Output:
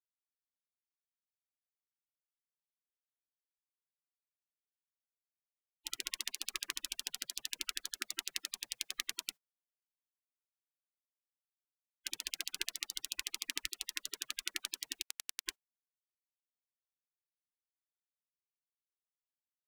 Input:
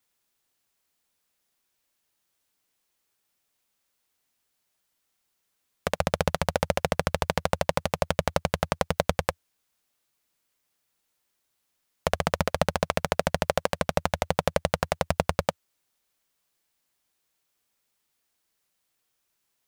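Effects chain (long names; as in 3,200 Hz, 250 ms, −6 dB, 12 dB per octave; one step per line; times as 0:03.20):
gate on every frequency bin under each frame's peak −20 dB weak
notch filter 2,300 Hz, Q 23
0:15.02–0:15.46: power curve on the samples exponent 2
level −1.5 dB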